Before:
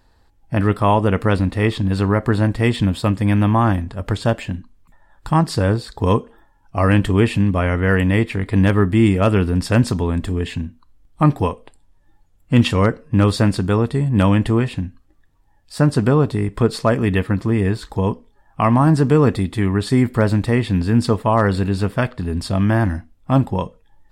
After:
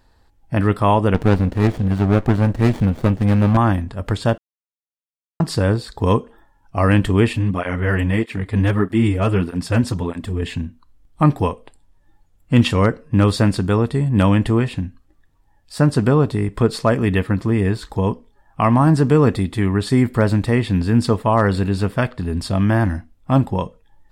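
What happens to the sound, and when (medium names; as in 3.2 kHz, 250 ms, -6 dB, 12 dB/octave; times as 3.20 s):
1.14–3.57 s: sliding maximum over 33 samples
4.38–5.40 s: mute
7.33–10.42 s: cancelling through-zero flanger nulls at 1.6 Hz, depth 6.9 ms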